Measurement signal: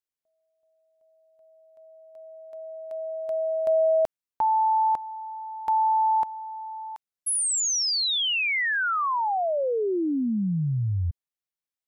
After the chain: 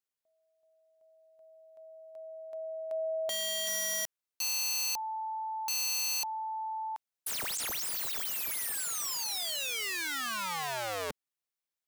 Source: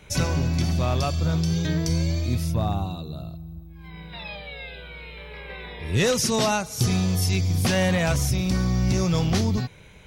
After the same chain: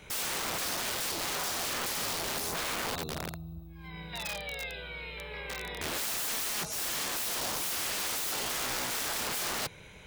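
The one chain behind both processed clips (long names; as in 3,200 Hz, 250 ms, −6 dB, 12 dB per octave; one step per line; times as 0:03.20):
wrap-around overflow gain 28.5 dB
low-shelf EQ 220 Hz −6 dB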